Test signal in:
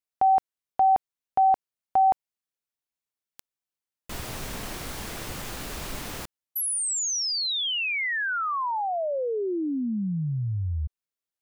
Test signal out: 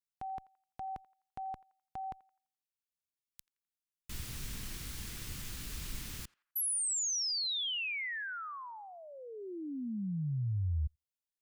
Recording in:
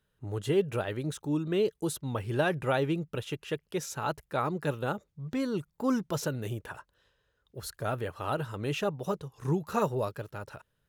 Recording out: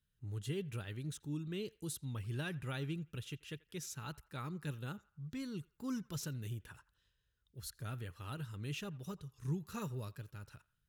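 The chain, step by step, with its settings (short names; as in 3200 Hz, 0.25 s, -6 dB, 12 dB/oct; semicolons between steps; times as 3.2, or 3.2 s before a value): passive tone stack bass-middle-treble 6-0-2; on a send: narrowing echo 85 ms, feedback 42%, band-pass 1400 Hz, level -20 dB; on the sum: gain +8.5 dB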